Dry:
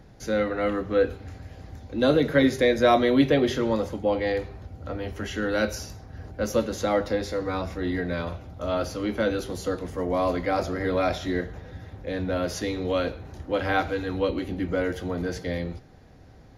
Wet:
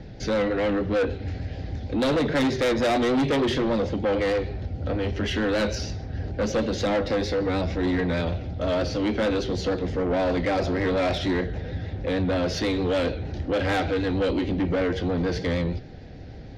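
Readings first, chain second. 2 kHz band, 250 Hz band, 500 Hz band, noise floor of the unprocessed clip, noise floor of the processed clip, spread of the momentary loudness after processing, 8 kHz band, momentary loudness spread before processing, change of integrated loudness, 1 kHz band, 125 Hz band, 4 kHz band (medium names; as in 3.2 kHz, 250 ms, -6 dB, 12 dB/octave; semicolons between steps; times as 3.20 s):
+0.5 dB, +1.5 dB, +0.5 dB, -50 dBFS, -39 dBFS, 9 LU, -0.5 dB, 16 LU, +0.5 dB, -1.0 dB, +4.5 dB, +3.0 dB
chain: low-pass 5 kHz 24 dB/octave; peaking EQ 1.1 kHz -13 dB 0.66 oct; in parallel at -2.5 dB: compression, threshold -32 dBFS, peak gain reduction 16 dB; on the sum: vibrato 6.5 Hz 52 cents; saturation -25 dBFS, distortion -8 dB; trim +5.5 dB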